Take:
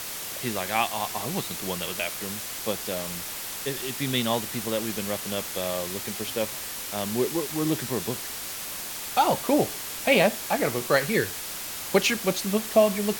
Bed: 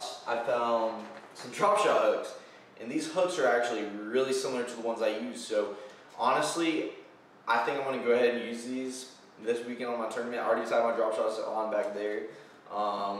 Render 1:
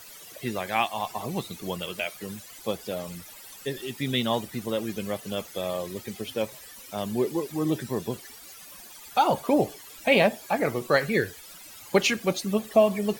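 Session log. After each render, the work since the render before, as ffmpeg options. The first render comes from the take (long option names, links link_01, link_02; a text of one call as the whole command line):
ffmpeg -i in.wav -af "afftdn=noise_reduction=16:noise_floor=-35" out.wav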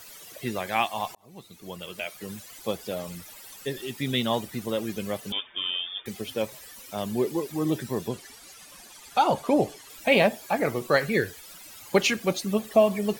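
ffmpeg -i in.wav -filter_complex "[0:a]asettb=1/sr,asplit=3[link_01][link_02][link_03];[link_01]atrim=end=5.324[link_04];[link_02]atrim=start=5.32:end=6.06,asetpts=PTS-STARTPTS,afade=type=in:duration=0.004:curve=qsin,afade=type=out:start_time=0.736:duration=0.004:curve=qsin,lowpass=frequency=3100:width_type=q:width=0.5098,lowpass=frequency=3100:width_type=q:width=0.6013,lowpass=frequency=3100:width_type=q:width=0.9,lowpass=frequency=3100:width_type=q:width=2.563,afreqshift=-3700[link_05];[link_03]atrim=start=6.056[link_06];[link_04][link_05]acrossfade=duration=0.004:curve1=hsin:curve2=qsin[link_07];[link_07][link_06]acrossfade=duration=0.004:curve1=qsin:curve2=hsin,asettb=1/sr,asplit=3[link_08][link_09][link_10];[link_08]atrim=end=8.084[link_11];[link_09]atrim=start=8.08:end=9.9,asetpts=PTS-STARTPTS,afade=type=in:duration=0.004:curve=qsin,afade=type=out:start_time=1.816:duration=0.004:curve=qsin,lowpass=11000[link_12];[link_10]atrim=start=9.896[link_13];[link_11][link_12]acrossfade=duration=0.004:curve1=hsin:curve2=qsin[link_14];[link_14][link_13]acrossfade=duration=0.004:curve1=qsin:curve2=hsin,asplit=2[link_15][link_16];[link_15]atrim=end=1.15,asetpts=PTS-STARTPTS,afade=type=out:start_time=1.146:duration=0.004:curve=hsin[link_17];[link_16]atrim=start=1.15,asetpts=PTS-STARTPTS,afade=type=in:duration=1.26[link_18];[link_17][link_18]concat=n=2:v=0:a=1" out.wav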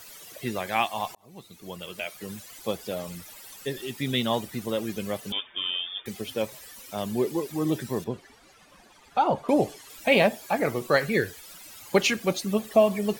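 ffmpeg -i in.wav -filter_complex "[0:a]asettb=1/sr,asplit=3[link_01][link_02][link_03];[link_01]atrim=end=8.044[link_04];[link_02]atrim=start=8.04:end=9.49,asetpts=PTS-STARTPTS,afade=type=in:duration=0.004:curve=qsin,afade=type=out:start_time=1.446:duration=0.004:curve=qsin,lowpass=frequency=1500:poles=1[link_05];[link_03]atrim=start=9.486[link_06];[link_04][link_05]acrossfade=duration=0.004:curve1=hsin:curve2=qsin[link_07];[link_07][link_06]acrossfade=duration=0.004:curve1=qsin:curve2=hsin" out.wav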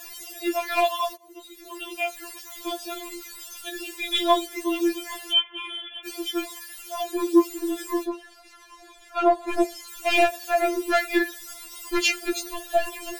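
ffmpeg -i in.wav -filter_complex "[0:a]asplit=2[link_01][link_02];[link_02]aeval=exprs='0.447*sin(PI/2*2.82*val(0)/0.447)':channel_layout=same,volume=-11dB[link_03];[link_01][link_03]amix=inputs=2:normalize=0,afftfilt=real='re*4*eq(mod(b,16),0)':imag='im*4*eq(mod(b,16),0)':win_size=2048:overlap=0.75" out.wav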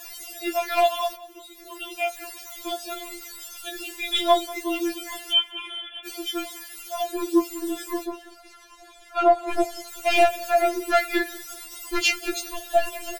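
ffmpeg -i in.wav -filter_complex "[0:a]asplit=2[link_01][link_02];[link_02]adelay=13,volume=-8dB[link_03];[link_01][link_03]amix=inputs=2:normalize=0,aecho=1:1:188|376|564:0.106|0.0371|0.013" out.wav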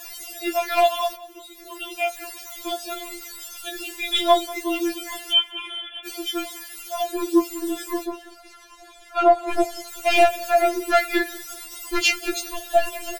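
ffmpeg -i in.wav -af "volume=2dB" out.wav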